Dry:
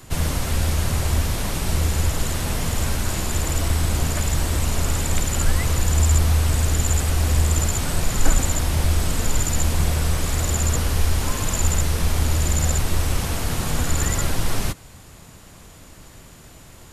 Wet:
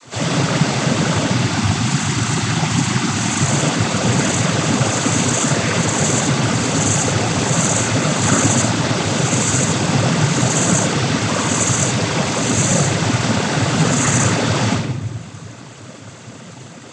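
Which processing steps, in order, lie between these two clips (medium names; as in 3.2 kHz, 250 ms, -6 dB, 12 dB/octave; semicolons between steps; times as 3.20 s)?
1.26–3.39 s: Chebyshev band-stop 350–710 Hz, order 3; simulated room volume 410 m³, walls mixed, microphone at 6.1 m; noise-vocoded speech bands 16; trim -3 dB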